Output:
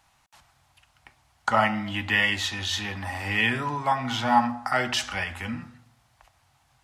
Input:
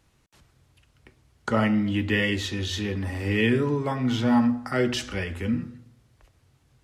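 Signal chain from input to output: resonant low shelf 580 Hz -9.5 dB, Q 3; gain +3.5 dB

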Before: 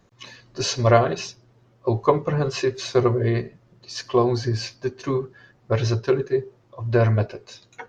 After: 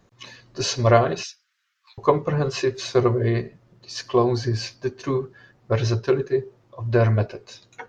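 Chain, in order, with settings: 1.23–1.98 steep high-pass 1400 Hz 48 dB/oct

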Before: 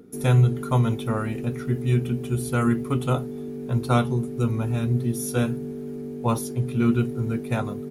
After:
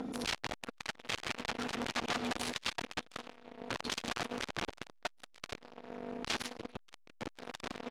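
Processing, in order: comb 3.8 ms, depth 97%; wrapped overs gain 22 dB; auto swell 0.118 s; compressor 4:1, threshold -42 dBFS, peak gain reduction 14 dB; LPF 4400 Hz 12 dB/oct; high shelf 2100 Hz +9.5 dB; speakerphone echo 0.18 s, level -10 dB; reverb RT60 4.1 s, pre-delay 30 ms, DRR 9 dB; core saturation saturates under 1700 Hz; gain +8 dB

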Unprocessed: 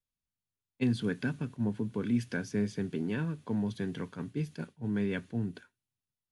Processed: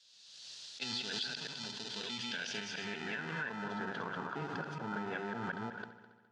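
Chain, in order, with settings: reverse delay 0.184 s, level 0 dB; in parallel at -7.5 dB: sample-and-hold 40×; on the sum: band-pass sweep 4300 Hz -> 1200 Hz, 1.87–3.97; on a send: multi-head echo 69 ms, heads first and third, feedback 52%, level -16.5 dB; on the sum: compressor, threshold -46 dBFS, peak gain reduction 8.5 dB; speaker cabinet 110–7200 Hz, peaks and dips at 130 Hz +3 dB, 290 Hz -5 dB, 1200 Hz -5 dB, 2200 Hz -8 dB; backwards sustainer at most 35 dB/s; gain +12 dB

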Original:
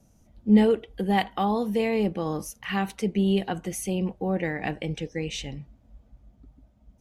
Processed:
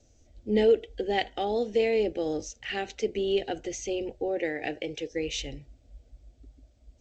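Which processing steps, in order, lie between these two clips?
fixed phaser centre 440 Hz, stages 4; 4.28–5.11 HPF 200 Hz 6 dB/oct; gain +2 dB; G.722 64 kbps 16000 Hz

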